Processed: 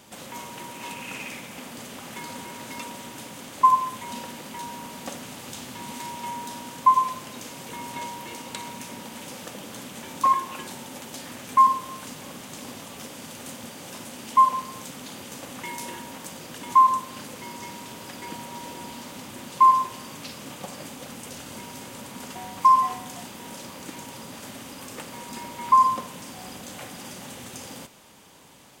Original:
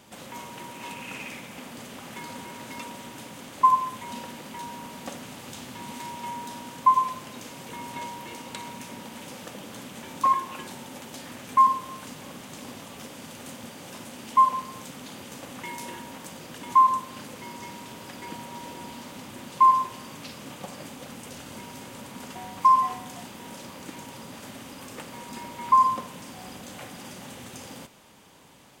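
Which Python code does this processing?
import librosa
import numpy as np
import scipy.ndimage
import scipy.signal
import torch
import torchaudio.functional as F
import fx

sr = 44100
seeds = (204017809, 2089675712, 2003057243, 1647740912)

y = fx.bass_treble(x, sr, bass_db=-1, treble_db=3)
y = y * librosa.db_to_amplitude(1.5)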